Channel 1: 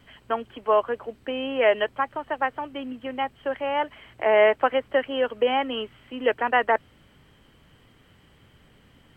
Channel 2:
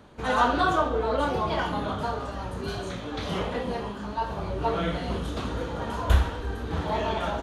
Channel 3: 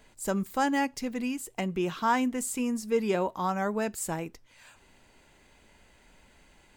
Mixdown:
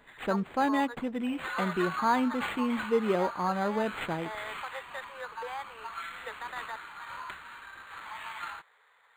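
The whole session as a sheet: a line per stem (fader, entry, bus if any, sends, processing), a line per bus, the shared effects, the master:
−11.0 dB, 0.00 s, no send, Chebyshev high-pass filter 420 Hz, order 8; flat-topped bell 1,400 Hz +14.5 dB; brickwall limiter −8.5 dBFS, peak gain reduction 11 dB; automatic ducking −9 dB, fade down 0.85 s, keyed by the third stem
+0.5 dB, 1.20 s, no send, downward compressor 6 to 1, threshold −25 dBFS, peak gain reduction 11 dB; inverse Chebyshev high-pass filter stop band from 570 Hz, stop band 40 dB
+0.5 dB, 0.00 s, no send, low-shelf EQ 64 Hz −12 dB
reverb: not used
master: linearly interpolated sample-rate reduction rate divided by 8×

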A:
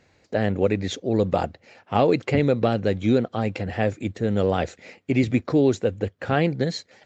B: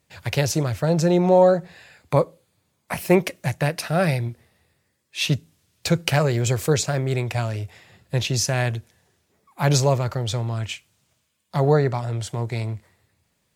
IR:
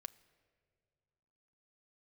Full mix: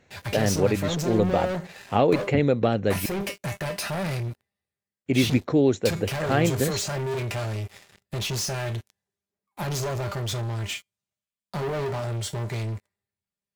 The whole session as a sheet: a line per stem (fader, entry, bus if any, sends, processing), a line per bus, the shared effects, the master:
−1.0 dB, 0.00 s, muted 0:03.06–0:05.06, no send, notch filter 4,800 Hz, Q 5.7
−6.0 dB, 0.00 s, no send, brickwall limiter −13.5 dBFS, peak gain reduction 10 dB; tuned comb filter 200 Hz, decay 0.19 s, harmonics all, mix 80%; leveller curve on the samples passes 5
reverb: not used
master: no processing

